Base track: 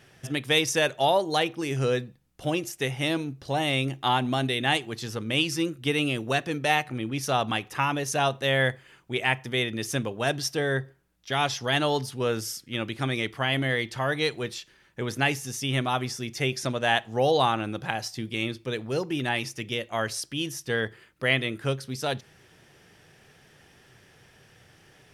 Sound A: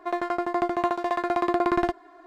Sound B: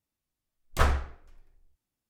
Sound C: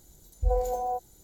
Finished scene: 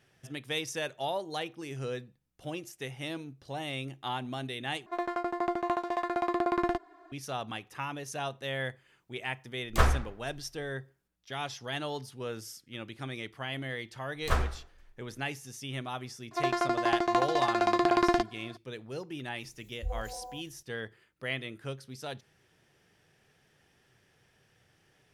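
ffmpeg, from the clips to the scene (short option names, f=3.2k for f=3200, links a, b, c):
-filter_complex "[1:a]asplit=2[a][b];[2:a]asplit=2[c][d];[0:a]volume=-11dB[e];[b]equalizer=f=5.3k:t=o:w=1.4:g=11.5[f];[3:a]asplit=2[g][h];[h]adelay=25,volume=-4dB[i];[g][i]amix=inputs=2:normalize=0[j];[e]asplit=2[k][l];[k]atrim=end=4.864[m];[a]atrim=end=2.26,asetpts=PTS-STARTPTS,volume=-5.5dB[n];[l]atrim=start=7.116[o];[c]atrim=end=2.09,asetpts=PTS-STARTPTS,afade=t=in:d=0.004:c=hsin,afade=t=out:st=2.086:d=0.004:c=hsin,adelay=8990[p];[d]atrim=end=2.09,asetpts=PTS-STARTPTS,volume=-4dB,afade=t=in:d=0.004:c=hsin,afade=t=out:st=2.086:d=0.004:c=hsin,adelay=13510[q];[f]atrim=end=2.26,asetpts=PTS-STARTPTS,volume=-2dB,afade=t=in:d=0.004:c=hsin,afade=t=out:st=2.256:d=0.004:c=hsin,adelay=16310[r];[j]atrim=end=1.23,asetpts=PTS-STARTPTS,volume=-11.5dB,afade=t=in:d=0.004:c=hsin,afade=t=out:st=1.226:d=0.004:c=hsin,adelay=855540S[s];[m][n]acrossfade=d=0.004:c1=hsin:c2=hsin[t];[t][o]acrossfade=d=0.004:c1=hsin:c2=hsin[u];[u][p][q][r][s]amix=inputs=5:normalize=0"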